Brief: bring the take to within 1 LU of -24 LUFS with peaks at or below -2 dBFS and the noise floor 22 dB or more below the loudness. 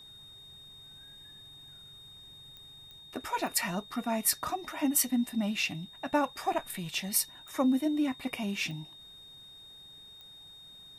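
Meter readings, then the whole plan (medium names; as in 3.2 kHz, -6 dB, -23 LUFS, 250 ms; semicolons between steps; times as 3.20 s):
clicks found 6; steady tone 3.7 kHz; tone level -49 dBFS; loudness -31.0 LUFS; peak level -12.0 dBFS; loudness target -24.0 LUFS
-> de-click; band-stop 3.7 kHz, Q 30; trim +7 dB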